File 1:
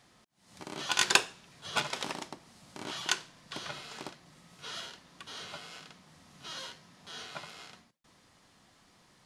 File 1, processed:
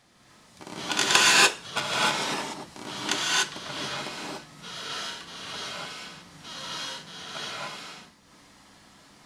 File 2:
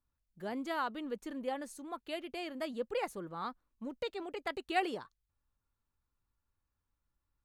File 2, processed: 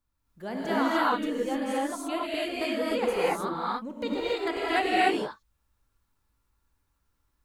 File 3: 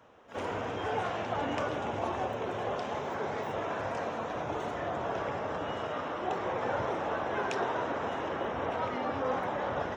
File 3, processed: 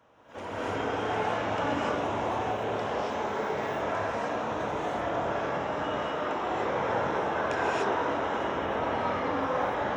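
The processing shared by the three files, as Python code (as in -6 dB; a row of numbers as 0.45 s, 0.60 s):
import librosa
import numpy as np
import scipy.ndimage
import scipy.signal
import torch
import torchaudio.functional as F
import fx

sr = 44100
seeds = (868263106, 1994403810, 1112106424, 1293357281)

y = fx.rev_gated(x, sr, seeds[0], gate_ms=320, shape='rising', drr_db=-7.5)
y = y * 10.0 ** (-30 / 20.0) / np.sqrt(np.mean(np.square(y)))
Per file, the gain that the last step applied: +1.0 dB, +3.0 dB, -4.0 dB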